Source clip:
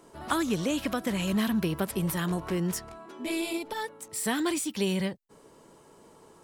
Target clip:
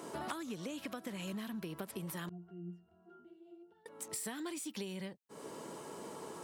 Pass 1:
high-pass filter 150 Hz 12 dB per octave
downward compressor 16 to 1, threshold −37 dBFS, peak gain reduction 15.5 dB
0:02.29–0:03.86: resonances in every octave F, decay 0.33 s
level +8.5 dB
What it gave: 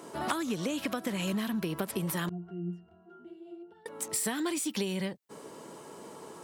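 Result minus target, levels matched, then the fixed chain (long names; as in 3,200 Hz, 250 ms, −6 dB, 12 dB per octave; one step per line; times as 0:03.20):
downward compressor: peak gain reduction −10 dB
high-pass filter 150 Hz 12 dB per octave
downward compressor 16 to 1, threshold −47.5 dBFS, peak gain reduction 25 dB
0:02.29–0:03.86: resonances in every octave F, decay 0.33 s
level +8.5 dB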